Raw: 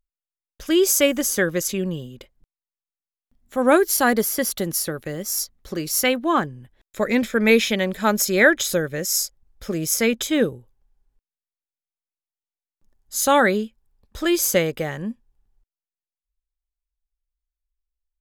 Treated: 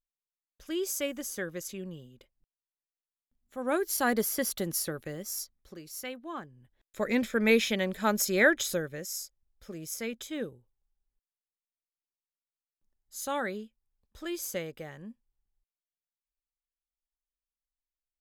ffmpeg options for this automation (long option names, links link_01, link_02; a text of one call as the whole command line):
ffmpeg -i in.wav -af "volume=4.5dB,afade=type=in:start_time=3.65:duration=0.56:silence=0.421697,afade=type=out:start_time=4.93:duration=0.88:silence=0.251189,afade=type=in:start_time=6.48:duration=0.65:silence=0.251189,afade=type=out:start_time=8.58:duration=0.6:silence=0.375837" out.wav